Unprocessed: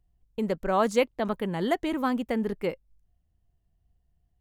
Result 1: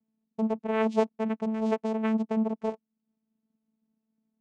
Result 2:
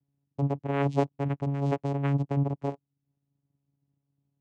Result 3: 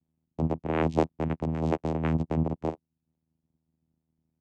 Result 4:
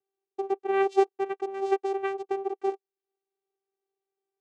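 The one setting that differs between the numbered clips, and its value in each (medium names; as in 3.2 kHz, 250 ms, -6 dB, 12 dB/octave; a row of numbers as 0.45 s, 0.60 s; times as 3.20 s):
vocoder, frequency: 220 Hz, 140 Hz, 80 Hz, 390 Hz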